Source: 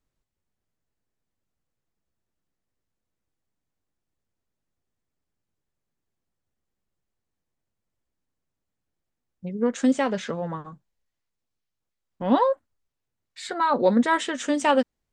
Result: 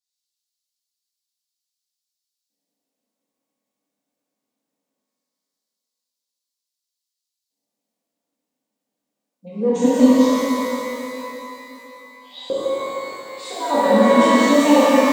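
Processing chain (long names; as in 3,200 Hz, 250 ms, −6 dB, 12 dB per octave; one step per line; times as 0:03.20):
low-shelf EQ 220 Hz +5 dB
phaser with its sweep stopped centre 360 Hz, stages 6
auto-filter high-pass square 0.2 Hz 310–4,400 Hz
reverb with rising layers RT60 3.2 s, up +12 semitones, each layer −8 dB, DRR −11 dB
level −4 dB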